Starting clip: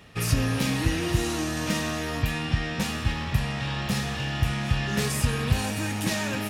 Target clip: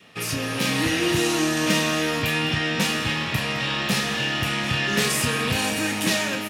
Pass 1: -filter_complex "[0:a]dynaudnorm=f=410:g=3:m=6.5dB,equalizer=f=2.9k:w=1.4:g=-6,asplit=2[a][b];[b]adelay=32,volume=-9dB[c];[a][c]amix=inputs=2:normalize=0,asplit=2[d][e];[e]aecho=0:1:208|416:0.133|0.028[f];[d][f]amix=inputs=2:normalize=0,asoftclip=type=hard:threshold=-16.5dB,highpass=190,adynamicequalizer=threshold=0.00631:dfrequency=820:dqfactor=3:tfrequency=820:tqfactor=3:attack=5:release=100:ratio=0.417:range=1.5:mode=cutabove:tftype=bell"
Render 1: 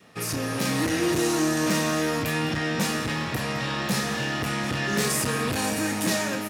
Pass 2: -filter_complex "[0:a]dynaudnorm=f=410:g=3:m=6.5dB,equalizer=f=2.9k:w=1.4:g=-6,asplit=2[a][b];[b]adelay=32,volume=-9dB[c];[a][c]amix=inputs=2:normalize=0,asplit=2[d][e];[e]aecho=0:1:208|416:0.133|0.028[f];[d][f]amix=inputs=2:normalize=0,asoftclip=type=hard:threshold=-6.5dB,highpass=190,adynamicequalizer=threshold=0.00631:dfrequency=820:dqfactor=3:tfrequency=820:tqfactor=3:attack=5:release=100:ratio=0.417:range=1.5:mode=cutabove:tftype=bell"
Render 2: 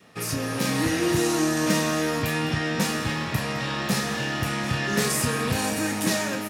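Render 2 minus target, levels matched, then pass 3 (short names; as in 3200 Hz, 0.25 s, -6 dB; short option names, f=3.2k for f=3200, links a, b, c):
4000 Hz band -4.0 dB
-filter_complex "[0:a]dynaudnorm=f=410:g=3:m=6.5dB,equalizer=f=2.9k:w=1.4:g=3,asplit=2[a][b];[b]adelay=32,volume=-9dB[c];[a][c]amix=inputs=2:normalize=0,asplit=2[d][e];[e]aecho=0:1:208|416:0.133|0.028[f];[d][f]amix=inputs=2:normalize=0,asoftclip=type=hard:threshold=-6.5dB,highpass=190,adynamicequalizer=threshold=0.00631:dfrequency=820:dqfactor=3:tfrequency=820:tqfactor=3:attack=5:release=100:ratio=0.417:range=1.5:mode=cutabove:tftype=bell"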